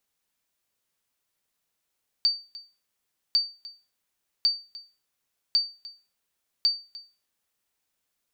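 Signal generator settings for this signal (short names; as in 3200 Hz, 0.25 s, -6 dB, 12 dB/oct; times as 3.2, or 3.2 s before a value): sonar ping 4610 Hz, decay 0.32 s, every 1.10 s, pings 5, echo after 0.30 s, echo -19.5 dB -14.5 dBFS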